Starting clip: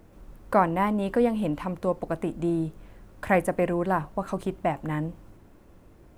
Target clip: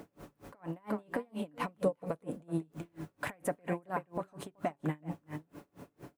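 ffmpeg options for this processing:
ffmpeg -i in.wav -filter_complex "[0:a]highpass=140,acompressor=threshold=-35dB:ratio=6,aecho=1:1:7:0.39,asettb=1/sr,asplit=3[link_01][link_02][link_03];[link_01]atrim=end=3.334[link_04];[link_02]atrim=start=3.33:end=3.86,asetpts=PTS-STARTPTS,afade=type=in:duration=0.004:curve=qsin,afade=type=out:start_time=0.526:duration=0.004:curve=qsin,acontrast=55[link_05];[link_03]atrim=start=3.856[link_06];[link_04][link_05]acrossfade=duration=0.004:curve1=hsin:curve2=qsin[link_07];[link_07][link_06]acrossfade=duration=0.004:curve1=qsin:curve2=hsin,aecho=1:1:377:0.282,alimiter=level_in=6dB:limit=-24dB:level=0:latency=1:release=58,volume=-6dB,asettb=1/sr,asplit=3[link_08][link_09][link_10];[link_08]atrim=end=1.814[link_11];[link_09]atrim=start=1.81:end=2.58,asetpts=PTS-STARTPTS,afade=type=in:duration=0.004:curve=qsin,afade=type=out:start_time=0.766:duration=0.004:curve=qsin,equalizer=frequency=200:width_type=o:width=0.33:gain=7,equalizer=frequency=315:width_type=o:width=0.33:gain=-3,equalizer=frequency=500:width_type=o:width=0.33:gain=10,equalizer=frequency=10000:width_type=o:width=0.33:gain=6[link_12];[link_10]atrim=start=2.576[link_13];[link_11][link_12]acrossfade=duration=0.004:curve1=hsin:curve2=qsin[link_14];[link_14][link_13]acrossfade=duration=0.004:curve1=qsin:curve2=hsin,aeval=exprs='val(0)*pow(10,-34*(0.5-0.5*cos(2*PI*4.3*n/s))/20)':channel_layout=same,volume=8.5dB" out.wav

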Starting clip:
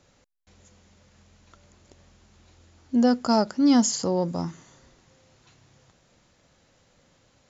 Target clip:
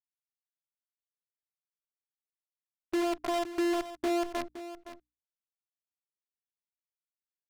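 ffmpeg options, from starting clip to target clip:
ffmpeg -i in.wav -filter_complex "[0:a]afftfilt=real='hypot(re,im)*cos(PI*b)':imag='0':win_size=512:overlap=0.75,afftfilt=real='re*gte(hypot(re,im),0.0631)':imag='im*gte(hypot(re,im),0.0631)':win_size=1024:overlap=0.75,firequalizer=gain_entry='entry(180,0);entry(530,8);entry(1100,2);entry(1500,-19)':delay=0.05:min_phase=1,alimiter=limit=-19.5dB:level=0:latency=1:release=42,acompressor=threshold=-28dB:ratio=3,aresample=11025,aeval=exprs='sgn(val(0))*max(abs(val(0))-0.00251,0)':channel_layout=same,aresample=44100,acrusher=bits=6:dc=4:mix=0:aa=0.000001,bandreject=frequency=60:width_type=h:width=6,bandreject=frequency=120:width_type=h:width=6,bandreject=frequency=180:width_type=h:width=6,bandreject=frequency=240:width_type=h:width=6,bandreject=frequency=300:width_type=h:width=6,adynamicsmooth=sensitivity=7:basefreq=2700,asplit=2[link_01][link_02];[link_02]aecho=0:1:516:0.224[link_03];[link_01][link_03]amix=inputs=2:normalize=0" out.wav

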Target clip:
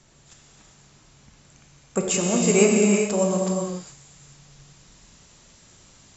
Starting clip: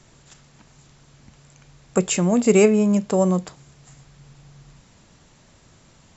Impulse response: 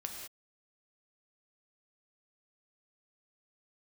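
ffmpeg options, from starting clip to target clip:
-filter_complex "[0:a]asetnsamples=nb_out_samples=441:pad=0,asendcmd='2.14 highshelf g 10',highshelf=frequency=3400:gain=4[link_01];[1:a]atrim=start_sample=2205,asetrate=22050,aresample=44100[link_02];[link_01][link_02]afir=irnorm=-1:irlink=0,volume=-6dB"

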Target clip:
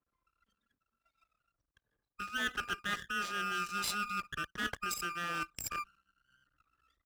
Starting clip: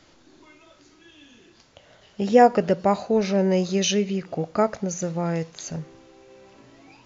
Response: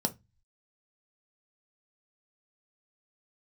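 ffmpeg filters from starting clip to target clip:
-af "afftfilt=real='real(if(lt(b,960),b+48*(1-2*mod(floor(b/48),2)),b),0)':imag='imag(if(lt(b,960),b+48*(1-2*mod(floor(b/48),2)),b),0)':win_size=2048:overlap=0.75,anlmdn=3.98,areverse,acompressor=threshold=-31dB:ratio=5,areverse,equalizer=frequency=510:width_type=o:width=1.1:gain=4,aeval=exprs='max(val(0),0)':channel_layout=same,highpass=40,highshelf=frequency=6500:gain=7.5"

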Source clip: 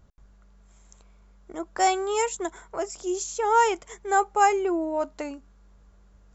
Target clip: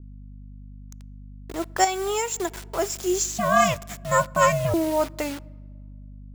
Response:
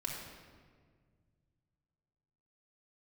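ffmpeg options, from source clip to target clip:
-filter_complex "[0:a]acrusher=bits=6:mix=0:aa=0.000001,asettb=1/sr,asplit=3[link_01][link_02][link_03];[link_01]atrim=end=3.264[link_04];[link_02]atrim=start=3.26:end=4.74,asetpts=PTS-STARTPTS,afade=type=in:duration=0.004:curve=qsin,afade=type=out:start_time=1.476:duration=0.004:curve=qsin,aeval=exprs='val(0)*sin(2*PI*250*n/s)':channel_layout=same[link_05];[link_03]atrim=start=4.736[link_06];[link_04][link_05]acrossfade=duration=0.004:curve1=hsin:curve2=qsin[link_07];[link_07][link_06]acrossfade=duration=0.004:curve1=qsin:curve2=hsin,asplit=2[link_08][link_09];[link_09]highshelf=frequency=5100:gain=8[link_10];[1:a]atrim=start_sample=2205,highshelf=frequency=3200:gain=-12[link_11];[link_10][link_11]afir=irnorm=-1:irlink=0,volume=-23dB[link_12];[link_08][link_12]amix=inputs=2:normalize=0,acontrast=85,aeval=exprs='val(0)+0.0141*(sin(2*PI*50*n/s)+sin(2*PI*2*50*n/s)/2+sin(2*PI*3*50*n/s)/3+sin(2*PI*4*50*n/s)/4+sin(2*PI*5*50*n/s)/5)':channel_layout=same,asettb=1/sr,asplit=3[link_13][link_14][link_15];[link_13]atrim=end=1.844[link_16];[link_14]atrim=start=1.84:end=2.63,asetpts=PTS-STARTPTS,afade=type=in:duration=0.004:curve=qsin,afade=type=out:start_time=0.786:duration=0.004:curve=qsin,acompressor=threshold=-19dB:ratio=12[link_17];[link_15]atrim=start=2.626[link_18];[link_16][link_17]acrossfade=duration=0.004:curve1=hsin:curve2=qsin[link_19];[link_19][link_18]acrossfade=duration=0.004:curve1=qsin:curve2=hsin,adynamicequalizer=threshold=0.0282:dfrequency=1600:dqfactor=0.7:tfrequency=1600:tqfactor=0.7:attack=5:release=100:ratio=0.375:range=2:mode=boostabove:tftype=highshelf,volume=-3.5dB"

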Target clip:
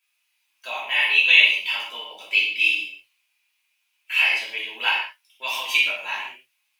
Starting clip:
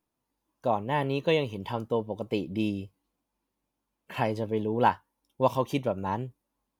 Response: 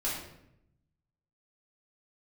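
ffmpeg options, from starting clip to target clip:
-filter_complex "[0:a]asplit=2[link_01][link_02];[link_02]alimiter=limit=-17.5dB:level=0:latency=1:release=29,volume=1dB[link_03];[link_01][link_03]amix=inputs=2:normalize=0,highpass=frequency=2500:width_type=q:width=4.3[link_04];[1:a]atrim=start_sample=2205,afade=type=out:start_time=0.25:duration=0.01,atrim=end_sample=11466[link_05];[link_04][link_05]afir=irnorm=-1:irlink=0,volume=2dB"

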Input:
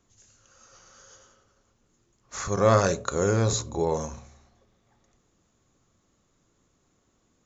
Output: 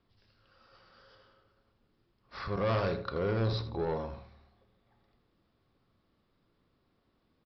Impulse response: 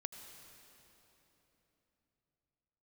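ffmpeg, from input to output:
-filter_complex "[0:a]aresample=11025,asoftclip=type=tanh:threshold=-21dB,aresample=44100,asplit=2[link_01][link_02];[link_02]adelay=80,lowpass=frequency=3000:poles=1,volume=-10dB,asplit=2[link_03][link_04];[link_04]adelay=80,lowpass=frequency=3000:poles=1,volume=0.27,asplit=2[link_05][link_06];[link_06]adelay=80,lowpass=frequency=3000:poles=1,volume=0.27[link_07];[link_01][link_03][link_05][link_07]amix=inputs=4:normalize=0,volume=-4.5dB"

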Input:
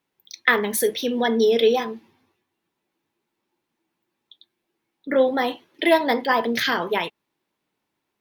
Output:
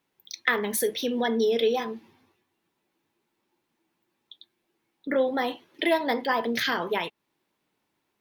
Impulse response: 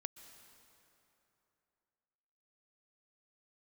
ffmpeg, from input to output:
-af "acompressor=threshold=-35dB:ratio=1.5,volume=1.5dB"

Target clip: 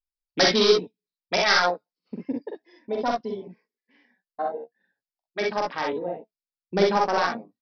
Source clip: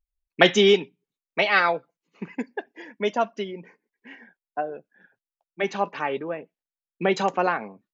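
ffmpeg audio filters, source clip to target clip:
ffmpeg -i in.wav -filter_complex "[0:a]acrossover=split=3100[link_01][link_02];[link_02]acompressor=threshold=-44dB:ratio=4:attack=1:release=60[link_03];[link_01][link_03]amix=inputs=2:normalize=0,afwtdn=0.0316,acontrast=23,aresample=11025,volume=10.5dB,asoftclip=hard,volume=-10.5dB,aresample=44100,aexciter=amount=12.1:drive=1:freq=4000,flanger=delay=3:depth=2.7:regen=70:speed=0.36:shape=triangular,asetrate=45938,aresample=44100,asplit=2[link_04][link_05];[link_05]aecho=0:1:45|62:0.708|0.668[link_06];[link_04][link_06]amix=inputs=2:normalize=0,volume=-2dB" out.wav

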